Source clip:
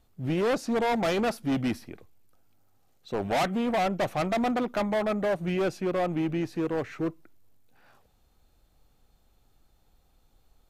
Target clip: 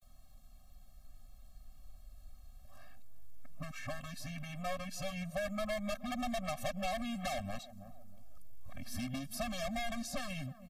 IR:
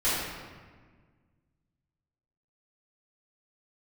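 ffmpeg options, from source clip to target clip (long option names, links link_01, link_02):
-filter_complex "[0:a]areverse,acrossover=split=560|5800[link_01][link_02][link_03];[link_03]acontrast=35[link_04];[link_01][link_02][link_04]amix=inputs=3:normalize=0,alimiter=limit=-20.5dB:level=0:latency=1:release=148,asplit=2[link_05][link_06];[link_06]adelay=319,lowpass=frequency=830:poles=1,volume=-19.5dB,asplit=2[link_07][link_08];[link_08]adelay=319,lowpass=frequency=830:poles=1,volume=0.32,asplit=2[link_09][link_10];[link_10]adelay=319,lowpass=frequency=830:poles=1,volume=0.32[link_11];[link_07][link_09][link_11]amix=inputs=3:normalize=0[link_12];[link_05][link_12]amix=inputs=2:normalize=0,acrossover=split=150|2000[link_13][link_14][link_15];[link_13]acompressor=threshold=-55dB:ratio=4[link_16];[link_14]acompressor=threshold=-40dB:ratio=4[link_17];[link_15]acompressor=threshold=-42dB:ratio=4[link_18];[link_16][link_17][link_18]amix=inputs=3:normalize=0,asubboost=boost=5:cutoff=70,afftfilt=real='re*eq(mod(floor(b*sr/1024/260),2),0)':imag='im*eq(mod(floor(b*sr/1024/260),2),0)':win_size=1024:overlap=0.75,volume=3.5dB"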